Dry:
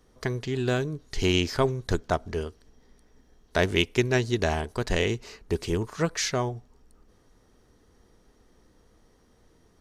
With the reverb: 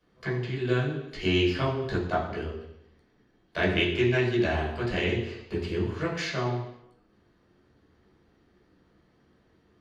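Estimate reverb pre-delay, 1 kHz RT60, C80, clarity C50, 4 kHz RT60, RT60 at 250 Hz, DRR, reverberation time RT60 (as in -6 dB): 11 ms, 0.85 s, 7.5 dB, 5.0 dB, 0.90 s, 0.80 s, -6.5 dB, 0.85 s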